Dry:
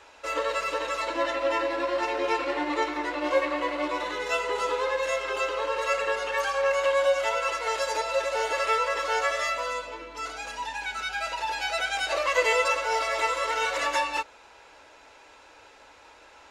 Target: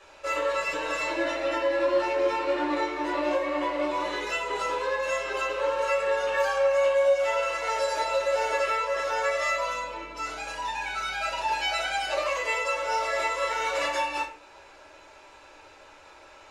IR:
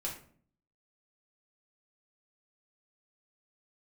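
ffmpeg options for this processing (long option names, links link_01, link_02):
-filter_complex "[0:a]asettb=1/sr,asplit=3[link_01][link_02][link_03];[link_01]atrim=end=0.604[link_04];[link_02]atrim=start=0.6:end=1.53,asetpts=PTS-STARTPTS,afade=type=in:duration=0.004:curve=qsin,afade=type=out:start_time=0.926:duration=0.004:curve=qsin,aecho=1:1:6.4:0.64,atrim=end_sample=41013[link_05];[link_03]atrim=start=1.526[link_06];[link_04][link_05]acrossfade=duration=0.004:curve1=hsin:curve2=qsin[link_07];[link_07][link_06]acrossfade=duration=0.004:curve1=qsin:curve2=hsin,alimiter=limit=-19.5dB:level=0:latency=1:release=306[link_08];[1:a]atrim=start_sample=2205[link_09];[link_08][link_09]afir=irnorm=-1:irlink=0"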